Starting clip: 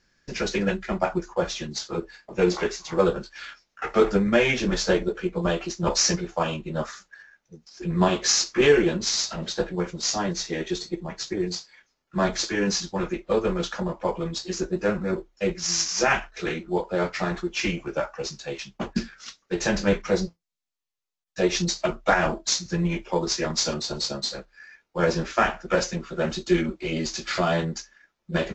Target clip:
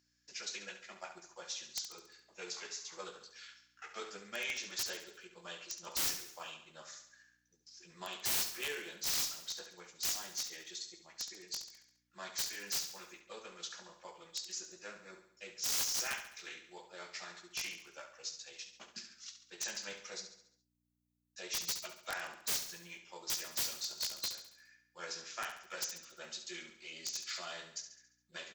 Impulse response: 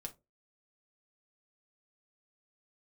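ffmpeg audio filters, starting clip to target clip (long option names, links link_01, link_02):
-filter_complex "[0:a]aeval=exprs='val(0)+0.01*(sin(2*PI*60*n/s)+sin(2*PI*2*60*n/s)/2+sin(2*PI*3*60*n/s)/3+sin(2*PI*4*60*n/s)/4+sin(2*PI*5*60*n/s)/5)':channel_layout=same,aderivative,aeval=exprs='(mod(14.1*val(0)+1,2)-1)/14.1':channel_layout=same,asplit=2[link_01][link_02];[link_02]aecho=0:1:69|138|207|276|345|414:0.335|0.171|0.0871|0.0444|0.0227|0.0116[link_03];[link_01][link_03]amix=inputs=2:normalize=0,volume=-5dB"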